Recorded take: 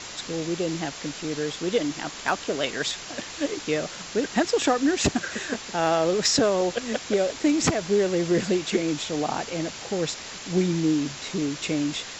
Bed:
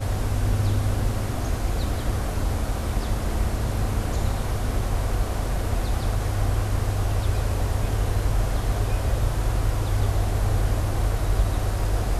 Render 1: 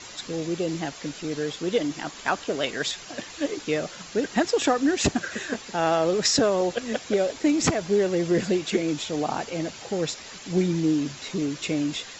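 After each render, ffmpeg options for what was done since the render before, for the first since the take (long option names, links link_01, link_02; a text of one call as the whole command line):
ffmpeg -i in.wav -af "afftdn=noise_reduction=7:noise_floor=-39" out.wav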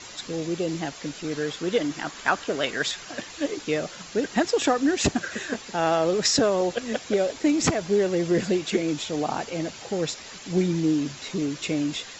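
ffmpeg -i in.wav -filter_complex "[0:a]asettb=1/sr,asplit=3[link_01][link_02][link_03];[link_01]atrim=end=1.254[link_04];[link_02]atrim=start=1.25:end=3.21,asetpts=PTS-STARTPTS,afade=type=in:duration=0.004:curve=qsin,afade=type=out:start_time=1.956:duration=0.004:curve=qsin,equalizer=frequency=1500:width=1.5:gain=4[link_05];[link_03]atrim=start=3.206[link_06];[link_04][link_05]acrossfade=duration=0.004:curve1=hsin:curve2=qsin[link_07];[link_07][link_06]acrossfade=duration=0.004:curve1=qsin:curve2=hsin" out.wav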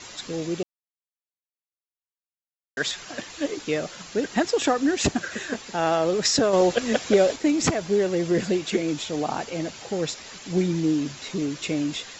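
ffmpeg -i in.wav -filter_complex "[0:a]asettb=1/sr,asplit=3[link_01][link_02][link_03];[link_01]atrim=end=6.534[link_04];[link_02]atrim=start=6.53:end=7.36,asetpts=PTS-STARTPTS,afade=type=in:duration=0.004:curve=qsin,afade=type=out:start_time=0.826:duration=0.004:curve=qsin,acontrast=34[link_05];[link_03]atrim=start=7.356[link_06];[link_04][link_05]acrossfade=duration=0.004:curve1=hsin:curve2=qsin[link_07];[link_07][link_06]acrossfade=duration=0.004:curve1=qsin:curve2=hsin,asplit=3[link_08][link_09][link_10];[link_08]atrim=end=0.63,asetpts=PTS-STARTPTS,afade=type=out:start_time=0.626:duration=0.004:curve=hsin[link_11];[link_09]atrim=start=0.63:end=2.77,asetpts=PTS-STARTPTS,volume=0[link_12];[link_10]atrim=start=2.77,asetpts=PTS-STARTPTS,afade=type=in:duration=0.004:curve=hsin[link_13];[link_11][link_12][link_13]concat=n=3:v=0:a=1" out.wav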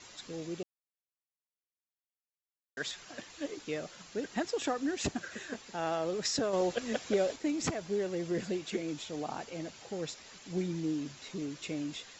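ffmpeg -i in.wav -af "volume=-11dB" out.wav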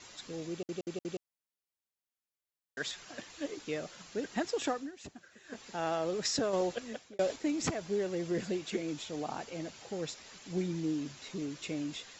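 ffmpeg -i in.wav -filter_complex "[0:a]asplit=8[link_01][link_02][link_03][link_04][link_05][link_06][link_07][link_08];[link_01]atrim=end=0.692[link_09];[link_02]atrim=start=0.508:end=0.692[link_10];[link_03]atrim=start=0.508:end=0.692[link_11];[link_04]atrim=start=0.508:end=0.692[link_12];[link_05]atrim=start=1.228:end=4.91,asetpts=PTS-STARTPTS,afade=type=out:start_time=3.472:duration=0.21:silence=0.177828[link_13];[link_06]atrim=start=4.91:end=5.43,asetpts=PTS-STARTPTS,volume=-15dB[link_14];[link_07]atrim=start=5.43:end=7.19,asetpts=PTS-STARTPTS,afade=type=in:duration=0.21:silence=0.177828,afade=type=out:start_time=1.09:duration=0.67[link_15];[link_08]atrim=start=7.19,asetpts=PTS-STARTPTS,afade=type=in:duration=0.004:curve=hsin[link_16];[link_09][link_10]acrossfade=duration=0.004:curve1=hsin:curve2=hsin[link_17];[link_17][link_11]acrossfade=duration=0.004:curve1=hsin:curve2=hsin[link_18];[link_18][link_12]acrossfade=duration=0.004:curve1=hsin:curve2=hsin[link_19];[link_13][link_14][link_15][link_16]concat=n=4:v=0:a=1[link_20];[link_19][link_20]acrossfade=duration=0.004:curve1=hsin:curve2=hsin" out.wav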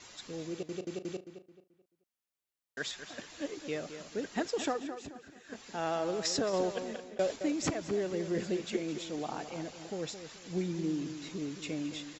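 ffmpeg -i in.wav -filter_complex "[0:a]asplit=2[link_01][link_02];[link_02]adelay=217,lowpass=frequency=3600:poles=1,volume=-10dB,asplit=2[link_03][link_04];[link_04]adelay=217,lowpass=frequency=3600:poles=1,volume=0.34,asplit=2[link_05][link_06];[link_06]adelay=217,lowpass=frequency=3600:poles=1,volume=0.34,asplit=2[link_07][link_08];[link_08]adelay=217,lowpass=frequency=3600:poles=1,volume=0.34[link_09];[link_01][link_03][link_05][link_07][link_09]amix=inputs=5:normalize=0" out.wav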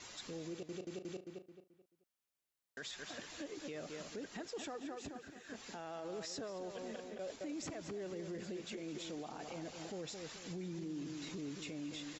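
ffmpeg -i in.wav -af "acompressor=threshold=-41dB:ratio=3,alimiter=level_in=12.5dB:limit=-24dB:level=0:latency=1:release=21,volume=-12.5dB" out.wav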